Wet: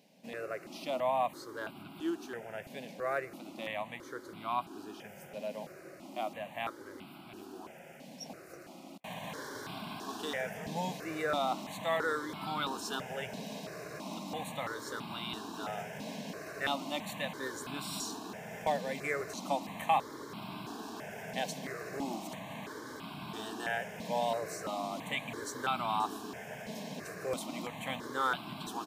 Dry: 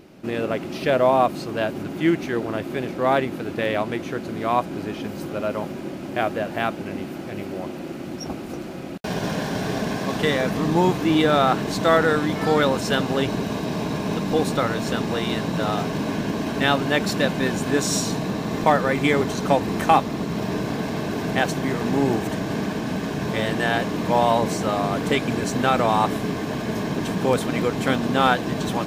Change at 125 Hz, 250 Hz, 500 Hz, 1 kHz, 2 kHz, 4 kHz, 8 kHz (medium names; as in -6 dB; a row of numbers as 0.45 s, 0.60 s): -21.0 dB, -19.5 dB, -15.5 dB, -12.5 dB, -13.0 dB, -12.5 dB, -12.0 dB